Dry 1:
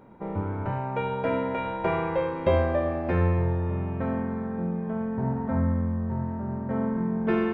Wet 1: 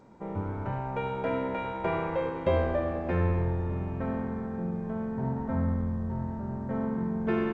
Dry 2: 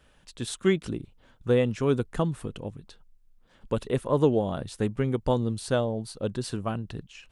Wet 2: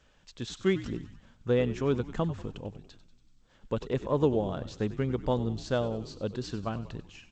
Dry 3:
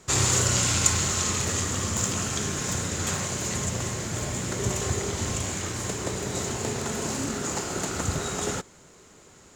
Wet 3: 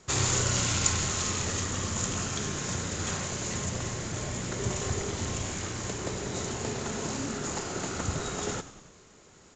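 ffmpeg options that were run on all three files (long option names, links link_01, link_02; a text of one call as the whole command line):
ffmpeg -i in.wav -filter_complex "[0:a]asplit=7[link_01][link_02][link_03][link_04][link_05][link_06][link_07];[link_02]adelay=95,afreqshift=-69,volume=-14.5dB[link_08];[link_03]adelay=190,afreqshift=-138,volume=-19.2dB[link_09];[link_04]adelay=285,afreqshift=-207,volume=-24dB[link_10];[link_05]adelay=380,afreqshift=-276,volume=-28.7dB[link_11];[link_06]adelay=475,afreqshift=-345,volume=-33.4dB[link_12];[link_07]adelay=570,afreqshift=-414,volume=-38.2dB[link_13];[link_01][link_08][link_09][link_10][link_11][link_12][link_13]amix=inputs=7:normalize=0,volume=-3.5dB" -ar 16000 -c:a g722 out.g722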